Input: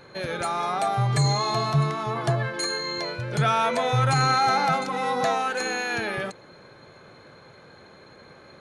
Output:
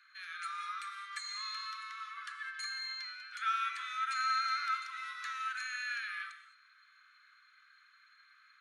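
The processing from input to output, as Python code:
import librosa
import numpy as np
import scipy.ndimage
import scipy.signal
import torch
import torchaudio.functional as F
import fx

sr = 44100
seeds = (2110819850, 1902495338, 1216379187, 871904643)

y = scipy.signal.sosfilt(scipy.signal.butter(16, 1200.0, 'highpass', fs=sr, output='sos'), x)
y = fx.high_shelf(y, sr, hz=3800.0, db=-11.5)
y = fx.rev_gated(y, sr, seeds[0], gate_ms=240, shape='flat', drr_db=8.0)
y = F.gain(torch.from_numpy(y), -7.0).numpy()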